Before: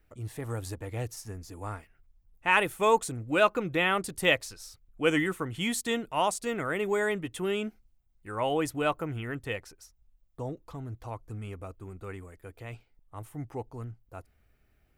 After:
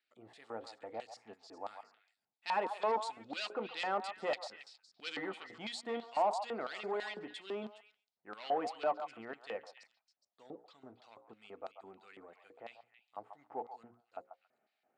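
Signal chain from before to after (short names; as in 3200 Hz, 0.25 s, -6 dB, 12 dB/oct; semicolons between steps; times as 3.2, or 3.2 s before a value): high shelf 5600 Hz -11.5 dB; notches 60/120/180/240/300/360/420/480/540 Hz; soft clip -26 dBFS, distortion -8 dB; LFO band-pass square 3 Hz 770–4300 Hz; speaker cabinet 190–8700 Hz, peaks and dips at 220 Hz +7 dB, 990 Hz -4 dB, 6000 Hz -8 dB; delay with a stepping band-pass 0.138 s, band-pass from 920 Hz, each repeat 1.4 oct, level -7 dB; gain +5 dB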